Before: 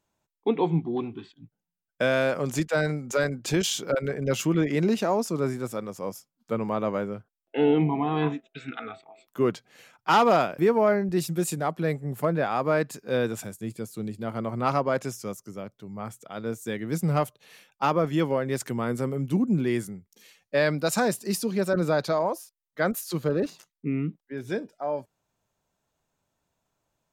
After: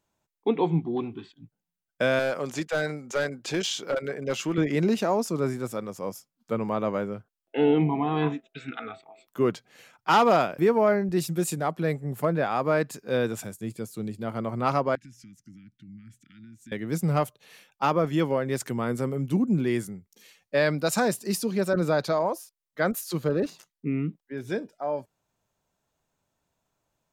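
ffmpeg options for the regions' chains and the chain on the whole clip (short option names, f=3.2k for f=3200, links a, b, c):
-filter_complex "[0:a]asettb=1/sr,asplit=3[a][b][c];[a]atrim=end=2.194[d];[b]atrim=start=2.19:end=4.58,asetpts=PTS-STARTPTS,afade=t=in:d=0.004:c=qsin,afade=t=out:st=2.386:d=0.004:c=qsin,acrossover=split=6800[e][f];[f]acompressor=threshold=-50dB:ratio=4:attack=1:release=60[g];[e][g]amix=inputs=2:normalize=0,highpass=f=340:p=1,aeval=exprs='clip(val(0),-1,0.0794)':c=same[h];[c]atrim=start=4.576[i];[d][h]acrossfade=d=0.004:c1=hsin:c2=qsin[j];[j][i]acrossfade=d=0.004:c1=qsin:c2=hsin,asettb=1/sr,asplit=3[k][l][m];[k]atrim=end=14.954[n];[l]atrim=start=14.95:end=16.72,asetpts=PTS-STARTPTS,afade=t=in:d=0.004:c=qsin,afade=t=out:st=1.766:d=0.004:c=qsin,aemphasis=mode=reproduction:type=75fm,acompressor=threshold=-42dB:ratio=4:attack=3.2:release=140:knee=1:detection=peak,asuperstop=centerf=690:order=12:qfactor=0.53[o];[m]atrim=start=16.716[p];[n][o]acrossfade=d=0.004:c1=hsin:c2=qsin[q];[q][p]acrossfade=d=0.004:c1=qsin:c2=hsin"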